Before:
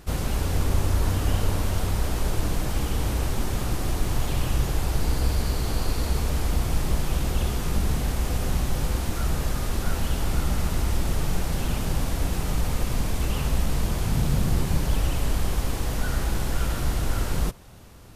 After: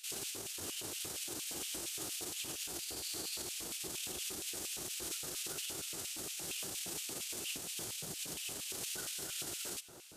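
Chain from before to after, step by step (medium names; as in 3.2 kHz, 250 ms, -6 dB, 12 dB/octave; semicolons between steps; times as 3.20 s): ten-band graphic EQ 250 Hz -10 dB, 500 Hz -11 dB, 1 kHz -10 dB, 2 kHz -7 dB, 8 kHz +6 dB; peak limiter -22.5 dBFS, peak gain reduction 11 dB; time stretch by phase-locked vocoder 0.56×; on a send: feedback echo behind a low-pass 288 ms, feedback 84%, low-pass 1.2 kHz, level -12 dB; on the sum: LFO high-pass square 4.3 Hz 360–2600 Hz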